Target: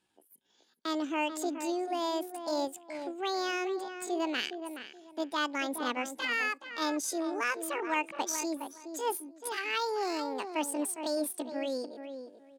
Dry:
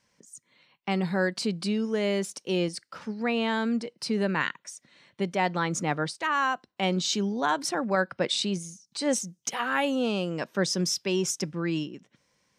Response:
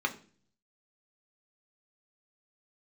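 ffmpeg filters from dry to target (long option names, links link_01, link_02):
-filter_complex "[0:a]asplit=2[link_01][link_02];[link_02]adelay=425,lowpass=frequency=1200:poles=1,volume=-8dB,asplit=2[link_03][link_04];[link_04]adelay=425,lowpass=frequency=1200:poles=1,volume=0.22,asplit=2[link_05][link_06];[link_06]adelay=425,lowpass=frequency=1200:poles=1,volume=0.22[link_07];[link_01][link_03][link_05][link_07]amix=inputs=4:normalize=0,adynamicsmooth=sensitivity=7:basefreq=5600,asetrate=72056,aresample=44100,atempo=0.612027,volume=-5.5dB"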